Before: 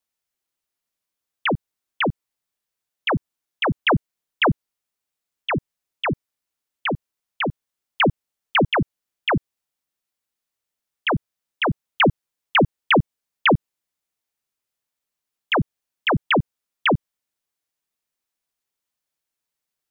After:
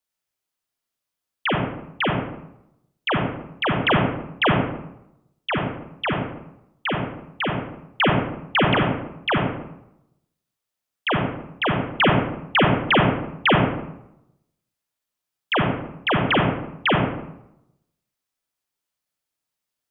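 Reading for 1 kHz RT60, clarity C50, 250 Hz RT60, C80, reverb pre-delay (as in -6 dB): 0.80 s, 2.0 dB, 0.90 s, 6.0 dB, 36 ms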